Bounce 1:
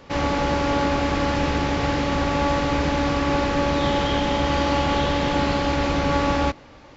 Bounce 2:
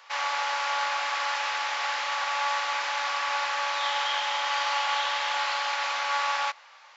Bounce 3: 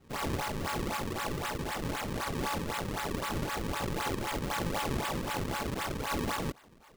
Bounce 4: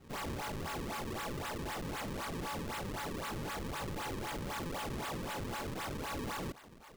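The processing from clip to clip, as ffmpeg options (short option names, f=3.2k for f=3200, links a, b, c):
-af "highpass=f=900:w=0.5412,highpass=f=900:w=1.3066"
-af "acrusher=samples=36:mix=1:aa=0.000001:lfo=1:lforange=57.6:lforate=3.9,volume=-5.5dB"
-af "asoftclip=type=tanh:threshold=-40dB,volume=2.5dB"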